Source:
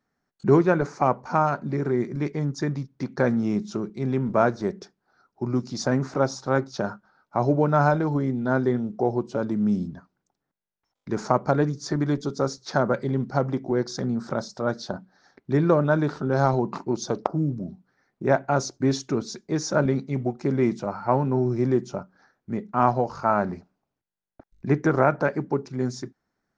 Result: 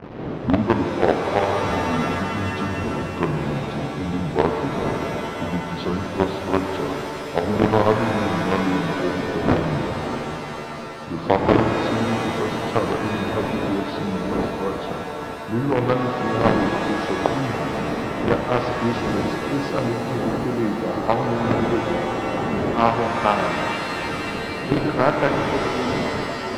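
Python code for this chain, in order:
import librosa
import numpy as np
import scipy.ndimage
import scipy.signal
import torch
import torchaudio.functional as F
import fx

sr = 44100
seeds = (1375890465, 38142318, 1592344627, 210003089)

p1 = fx.pitch_glide(x, sr, semitones=-8.0, runs='ending unshifted')
p2 = fx.dmg_wind(p1, sr, seeds[0], corner_hz=360.0, level_db=-30.0)
p3 = fx.highpass(p2, sr, hz=180.0, slope=6)
p4 = fx.quant_companded(p3, sr, bits=2)
p5 = p3 + (p4 * 10.0 ** (-5.5 / 20.0))
p6 = fx.air_absorb(p5, sr, metres=320.0)
p7 = fx.rev_shimmer(p6, sr, seeds[1], rt60_s=3.4, semitones=7, shimmer_db=-2, drr_db=4.0)
y = p7 * 10.0 ** (-1.5 / 20.0)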